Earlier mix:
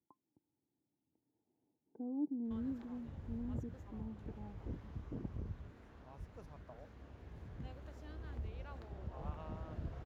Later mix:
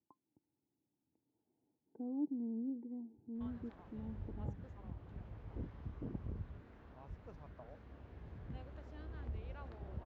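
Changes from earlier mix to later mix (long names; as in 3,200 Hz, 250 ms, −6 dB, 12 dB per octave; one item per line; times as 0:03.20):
background: entry +0.90 s
master: add Bessel low-pass filter 3,500 Hz, order 2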